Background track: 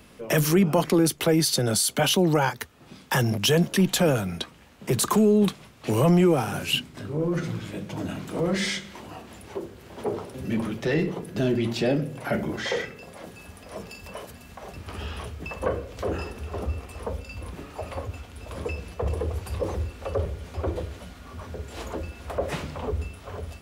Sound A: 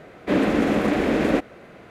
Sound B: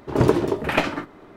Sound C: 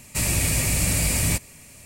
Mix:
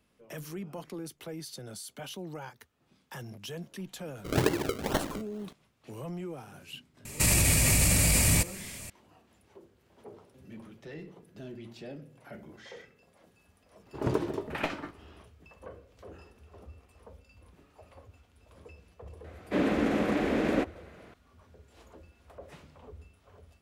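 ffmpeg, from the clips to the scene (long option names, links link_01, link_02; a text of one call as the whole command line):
ffmpeg -i bed.wav -i cue0.wav -i cue1.wav -i cue2.wav -filter_complex "[2:a]asplit=2[link_01][link_02];[0:a]volume=-20dB[link_03];[link_01]acrusher=samples=35:mix=1:aa=0.000001:lfo=1:lforange=35:lforate=2.2[link_04];[3:a]alimiter=level_in=16.5dB:limit=-1dB:release=50:level=0:latency=1[link_05];[link_04]atrim=end=1.36,asetpts=PTS-STARTPTS,volume=-9dB,afade=type=in:duration=0.004:curve=hsin,afade=type=out:start_time=1.356:duration=0.004:curve=hsin,adelay=183897S[link_06];[link_05]atrim=end=1.85,asetpts=PTS-STARTPTS,volume=-13dB,afade=type=in:duration=0.004:curve=hsin,afade=type=out:start_time=1.846:duration=0.004:curve=hsin,adelay=7050[link_07];[link_02]atrim=end=1.36,asetpts=PTS-STARTPTS,volume=-11.5dB,afade=type=in:duration=0.004:curve=hsin,afade=type=out:start_time=1.356:duration=0.004:curve=hsin,adelay=13860[link_08];[1:a]atrim=end=1.9,asetpts=PTS-STARTPTS,volume=-7dB,afade=type=in:duration=0.004:curve=hsin,afade=type=out:start_time=1.896:duration=0.004:curve=hsin,adelay=848484S[link_09];[link_03][link_06][link_07][link_08][link_09]amix=inputs=5:normalize=0" out.wav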